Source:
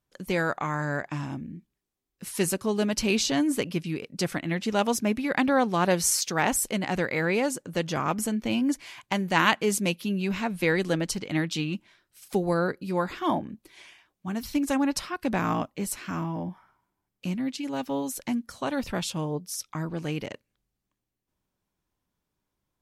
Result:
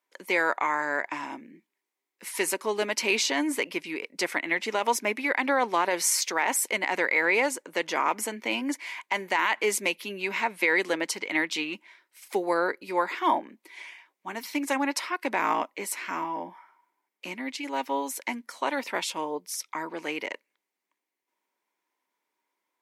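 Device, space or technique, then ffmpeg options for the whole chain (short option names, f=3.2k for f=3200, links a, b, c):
laptop speaker: -af "highpass=f=310:w=0.5412,highpass=f=310:w=1.3066,equalizer=f=950:t=o:w=0.22:g=10,equalizer=f=2.1k:t=o:w=0.49:g=11,alimiter=limit=-13dB:level=0:latency=1:release=50"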